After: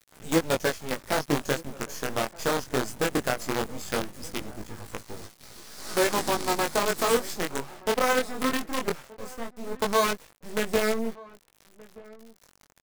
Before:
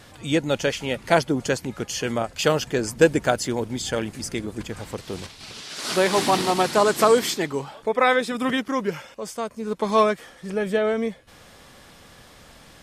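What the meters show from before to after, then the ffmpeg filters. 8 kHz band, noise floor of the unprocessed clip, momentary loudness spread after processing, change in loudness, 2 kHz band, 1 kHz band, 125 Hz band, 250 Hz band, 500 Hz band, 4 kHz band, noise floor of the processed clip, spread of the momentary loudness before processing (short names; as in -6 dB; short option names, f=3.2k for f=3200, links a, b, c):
-2.5 dB, -49 dBFS, 16 LU, -5.0 dB, -4.0 dB, -5.0 dB, -6.5 dB, -5.5 dB, -6.0 dB, -4.5 dB, -62 dBFS, 14 LU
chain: -filter_complex "[0:a]equalizer=f=2.9k:w=2:g=-14.5,alimiter=limit=-12dB:level=0:latency=1:release=167,acrusher=bits=4:dc=4:mix=0:aa=0.000001,flanger=delay=18:depth=5.6:speed=0.18,asplit=2[a][b];[b]adelay=1224,volume=-21dB,highshelf=f=4k:g=-27.6[c];[a][c]amix=inputs=2:normalize=0"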